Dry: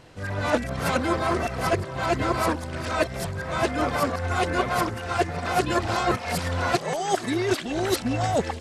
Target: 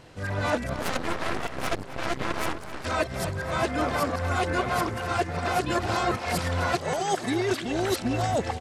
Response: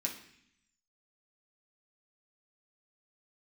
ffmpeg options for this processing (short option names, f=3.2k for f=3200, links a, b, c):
-filter_complex "[0:a]asettb=1/sr,asplit=3[a][b][c];[a]atrim=end=0.744[d];[b]atrim=start=0.74:end=2.85,asetpts=PTS-STARTPTS,afade=t=in:d=0.004:c=qsin,afade=t=out:st=2.106:d=0.004:c=qsin,aeval=exprs='0.316*(cos(1*acos(clip(val(0)/0.316,-1,1)))-cos(1*PI/2))+0.0794*(cos(3*acos(clip(val(0)/0.316,-1,1)))-cos(3*PI/2))+0.0501*(cos(6*acos(clip(val(0)/0.316,-1,1)))-cos(6*PI/2))':c=same[e];[c]atrim=start=2.846[f];[d][e]acrossfade=d=0.004:c1=hsin:c2=qsin[g];[g][f]acrossfade=d=0.004:c1=qsin:c2=hsin,asplit=2[h][i];[i]adelay=262.4,volume=-13dB,highshelf=f=4k:g=-5.9[j];[h][j]amix=inputs=2:normalize=0,acompressor=threshold=-21dB:ratio=6"